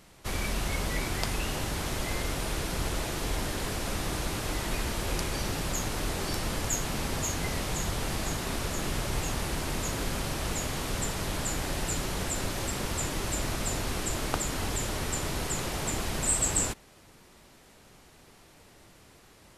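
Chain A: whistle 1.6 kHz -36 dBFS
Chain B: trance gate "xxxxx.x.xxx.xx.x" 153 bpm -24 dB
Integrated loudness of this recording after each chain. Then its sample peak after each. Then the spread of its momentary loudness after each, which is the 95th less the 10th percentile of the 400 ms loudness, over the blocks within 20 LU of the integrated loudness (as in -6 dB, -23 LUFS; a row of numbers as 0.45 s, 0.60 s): -31.0 LUFS, -32.5 LUFS; -10.0 dBFS, -9.5 dBFS; 8 LU, 4 LU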